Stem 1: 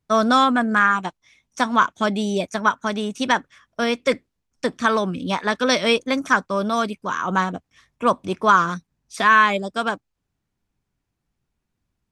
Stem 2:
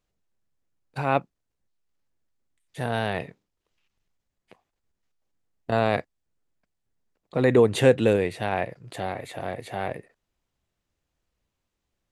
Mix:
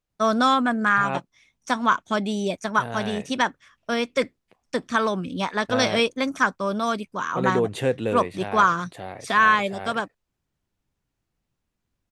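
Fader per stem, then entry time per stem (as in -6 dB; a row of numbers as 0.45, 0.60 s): -3.0, -5.5 dB; 0.10, 0.00 s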